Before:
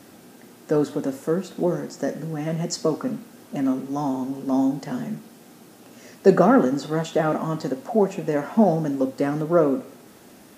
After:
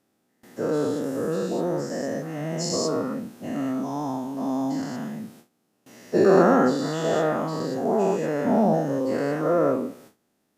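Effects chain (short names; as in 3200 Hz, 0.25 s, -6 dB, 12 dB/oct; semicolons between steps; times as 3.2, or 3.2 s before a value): spectral dilation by 0.24 s; gate with hold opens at -30 dBFS; gain -8 dB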